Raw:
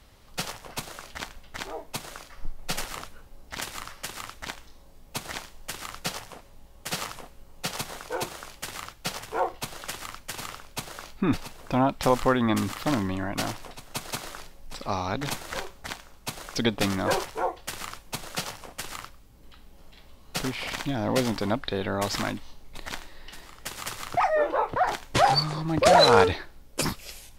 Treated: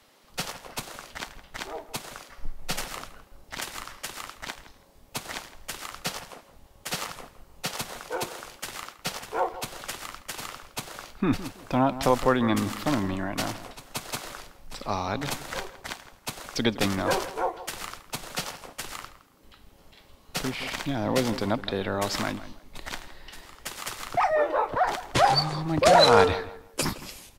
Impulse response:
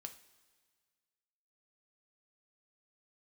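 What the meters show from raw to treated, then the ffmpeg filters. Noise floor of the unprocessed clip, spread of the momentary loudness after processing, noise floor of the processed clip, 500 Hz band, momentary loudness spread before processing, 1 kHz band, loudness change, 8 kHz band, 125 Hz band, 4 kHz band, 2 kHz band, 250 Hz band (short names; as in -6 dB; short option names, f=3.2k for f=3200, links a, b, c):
-51 dBFS, 17 LU, -56 dBFS, 0.0 dB, 17 LU, 0.0 dB, 0.0 dB, 0.0 dB, -0.5 dB, 0.0 dB, 0.0 dB, 0.0 dB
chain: -filter_complex "[0:a]asplit=2[a][b];[b]adelay=164,lowpass=f=2.3k:p=1,volume=-14dB,asplit=2[c][d];[d]adelay=164,lowpass=f=2.3k:p=1,volume=0.27,asplit=2[e][f];[f]adelay=164,lowpass=f=2.3k:p=1,volume=0.27[g];[a][c][e][g]amix=inputs=4:normalize=0,acrossover=split=200|1400[h][i][j];[h]aeval=exprs='sgn(val(0))*max(abs(val(0))-0.00282,0)':c=same[k];[k][i][j]amix=inputs=3:normalize=0"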